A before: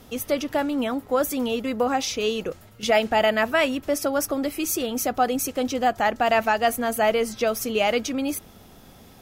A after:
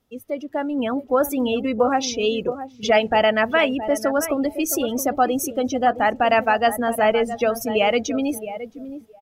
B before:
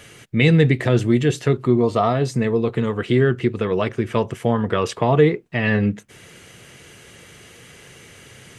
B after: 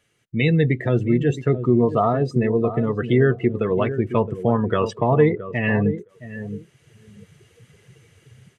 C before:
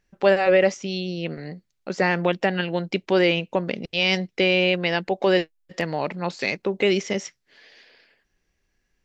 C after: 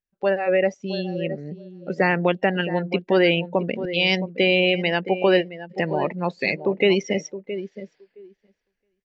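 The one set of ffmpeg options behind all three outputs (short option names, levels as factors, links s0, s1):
-filter_complex "[0:a]dynaudnorm=f=470:g=3:m=2.82,asplit=2[s0][s1];[s1]adelay=668,lowpass=f=3000:p=1,volume=0.282,asplit=2[s2][s3];[s3]adelay=668,lowpass=f=3000:p=1,volume=0.23,asplit=2[s4][s5];[s5]adelay=668,lowpass=f=3000:p=1,volume=0.23[s6];[s2][s4][s6]amix=inputs=3:normalize=0[s7];[s0][s7]amix=inputs=2:normalize=0,afftdn=nr=19:nf=-24,volume=0.631"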